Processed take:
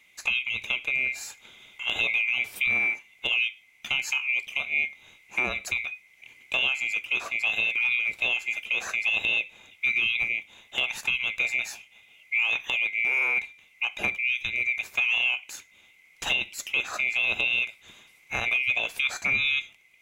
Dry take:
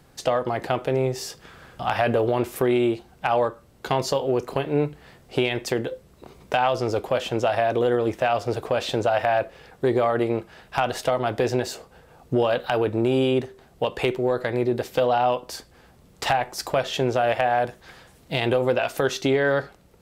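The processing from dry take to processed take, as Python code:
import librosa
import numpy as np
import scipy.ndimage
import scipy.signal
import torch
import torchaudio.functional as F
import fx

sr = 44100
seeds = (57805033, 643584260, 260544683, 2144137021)

y = fx.band_swap(x, sr, width_hz=2000)
y = y * 10.0 ** (-4.5 / 20.0)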